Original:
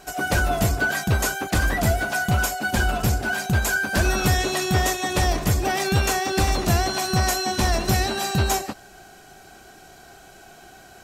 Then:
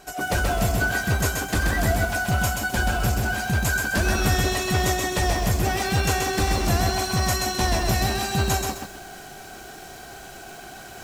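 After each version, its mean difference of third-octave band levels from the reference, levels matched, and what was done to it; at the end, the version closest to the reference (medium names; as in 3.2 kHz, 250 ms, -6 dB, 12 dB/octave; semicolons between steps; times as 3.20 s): 4.0 dB: reverse; upward compressor, threshold -29 dBFS; reverse; bit-crushed delay 130 ms, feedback 35%, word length 7-bit, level -3 dB; trim -2.5 dB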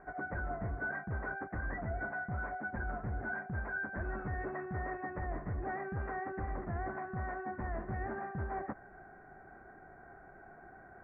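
14.0 dB: reverse; compression 6:1, threshold -28 dBFS, peak gain reduction 12.5 dB; reverse; steep low-pass 2 kHz 72 dB/octave; trim -7 dB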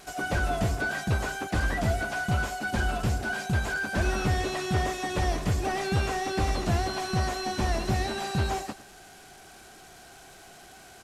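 3.0 dB: one-bit delta coder 64 kbps, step -38.5 dBFS; on a send: delay 106 ms -17.5 dB; on the sum: trim -5.5 dB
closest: third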